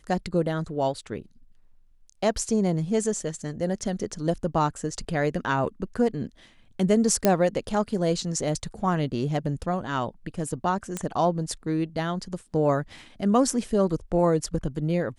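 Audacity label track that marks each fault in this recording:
7.250000	7.250000	click −5 dBFS
10.970000	10.970000	click −15 dBFS

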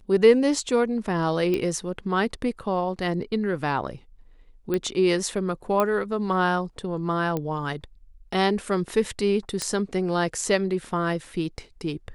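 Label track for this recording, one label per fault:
1.540000	1.540000	click −14 dBFS
4.740000	4.740000	click −14 dBFS
5.800000	5.800000	click −10 dBFS
7.370000	7.370000	click −15 dBFS
9.620000	9.620000	click −12 dBFS

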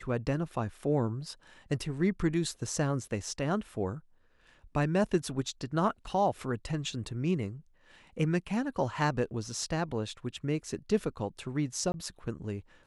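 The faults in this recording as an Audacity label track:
11.920000	11.940000	drop-out 21 ms

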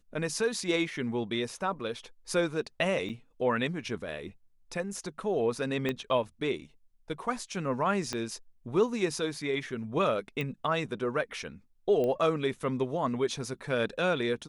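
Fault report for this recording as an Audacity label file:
3.090000	3.100000	drop-out 6.9 ms
5.890000	5.890000	click −17 dBFS
8.130000	8.130000	click −18 dBFS
10.410000	10.410000	click −21 dBFS
12.040000	12.040000	click −21 dBFS

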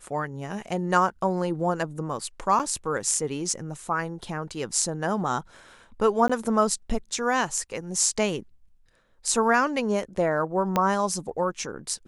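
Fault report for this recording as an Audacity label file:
2.590000	2.600000	drop-out 7.1 ms
6.280000	6.290000	drop-out 15 ms
10.760000	10.760000	click −9 dBFS

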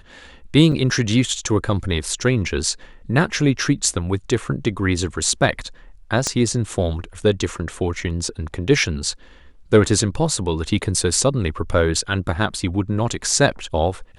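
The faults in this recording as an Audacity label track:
0.720000	0.720000	drop-out 3.7 ms
6.270000	6.270000	click −7 dBFS

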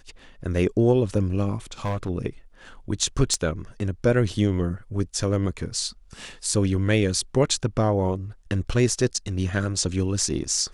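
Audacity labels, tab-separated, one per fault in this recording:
1.850000	2.090000	clipping −22.5 dBFS
3.340000	3.340000	click −13 dBFS

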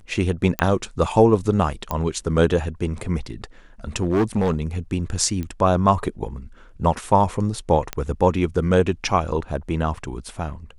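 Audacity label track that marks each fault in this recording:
0.590000	0.590000	click −7 dBFS
1.910000	1.910000	click −11 dBFS
4.010000	4.620000	clipping −15 dBFS
5.430000	5.430000	click −17 dBFS
7.930000	7.930000	click −10 dBFS
9.970000	9.970000	drop-out 2.7 ms

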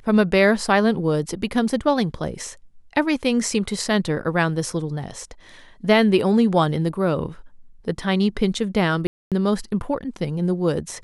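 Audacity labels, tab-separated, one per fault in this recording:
9.070000	9.320000	drop-out 247 ms

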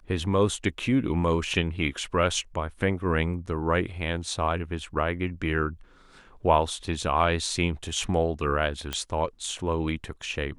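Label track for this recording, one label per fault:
8.930000	8.930000	click −13 dBFS

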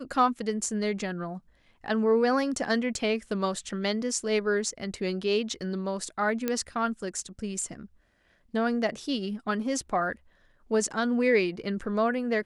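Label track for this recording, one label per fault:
6.480000	6.480000	click −13 dBFS

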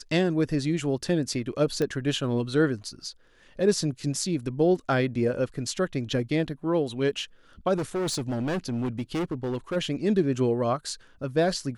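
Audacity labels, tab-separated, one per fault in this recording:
1.820000	1.820000	click −16 dBFS
7.760000	9.770000	clipping −25 dBFS

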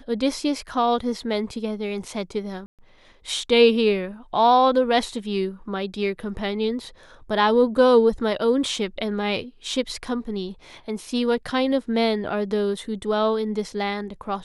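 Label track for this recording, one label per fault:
2.660000	2.790000	drop-out 127 ms

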